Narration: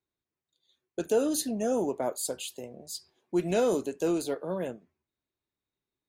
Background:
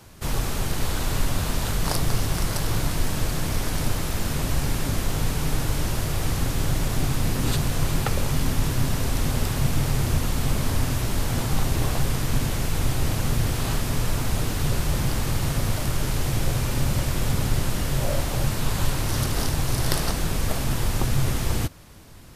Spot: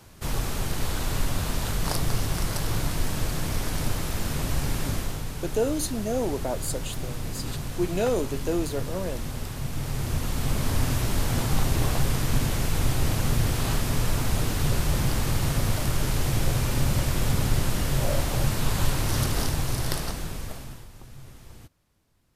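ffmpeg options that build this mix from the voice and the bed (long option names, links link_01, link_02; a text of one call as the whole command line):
ffmpeg -i stem1.wav -i stem2.wav -filter_complex "[0:a]adelay=4450,volume=0.5dB[link_01];[1:a]volume=6dB,afade=type=out:start_time=4.9:duration=0.34:silence=0.473151,afade=type=in:start_time=9.68:duration=1.22:silence=0.375837,afade=type=out:start_time=19.24:duration=1.63:silence=0.0794328[link_02];[link_01][link_02]amix=inputs=2:normalize=0" out.wav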